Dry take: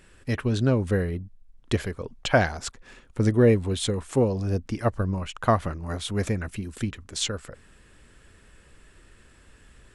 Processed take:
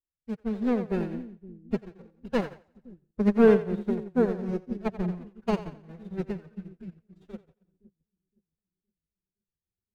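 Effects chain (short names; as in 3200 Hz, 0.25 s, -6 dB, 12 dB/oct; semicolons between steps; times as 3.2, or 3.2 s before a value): median filter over 41 samples; LPF 3800 Hz 6 dB/oct; sample leveller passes 1; formant-preserving pitch shift +11 st; on a send: split-band echo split 350 Hz, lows 0.516 s, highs 88 ms, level -5 dB; on the sum: upward expander 2.5:1, over -42 dBFS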